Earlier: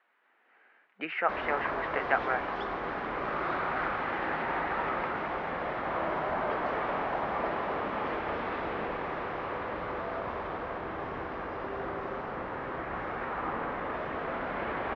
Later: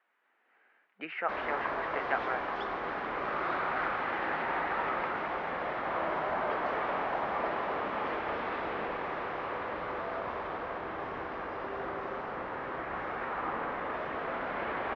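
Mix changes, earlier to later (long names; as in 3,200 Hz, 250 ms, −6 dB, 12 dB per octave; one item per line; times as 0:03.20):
speech −4.5 dB
background: add low-shelf EQ 260 Hz −6.5 dB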